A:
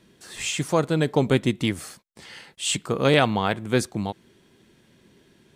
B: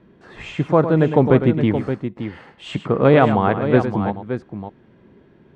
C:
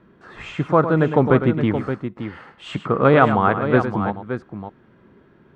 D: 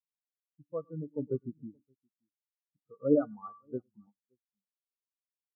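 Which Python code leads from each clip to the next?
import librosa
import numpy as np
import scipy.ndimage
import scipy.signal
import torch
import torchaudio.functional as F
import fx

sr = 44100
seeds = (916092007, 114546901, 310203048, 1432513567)

y1 = scipy.signal.sosfilt(scipy.signal.butter(2, 1400.0, 'lowpass', fs=sr, output='sos'), x)
y1 = fx.echo_multitap(y1, sr, ms=(106, 572), db=(-10.5, -9.5))
y1 = F.gain(torch.from_numpy(y1), 6.5).numpy()
y2 = fx.peak_eq(y1, sr, hz=1300.0, db=8.5, octaves=0.66)
y2 = F.gain(torch.from_numpy(y2), -2.0).numpy()
y3 = fx.comb_fb(y2, sr, f0_hz=290.0, decay_s=0.65, harmonics='all', damping=0.0, mix_pct=70)
y3 = fx.spectral_expand(y3, sr, expansion=4.0)
y3 = F.gain(torch.from_numpy(y3), -3.0).numpy()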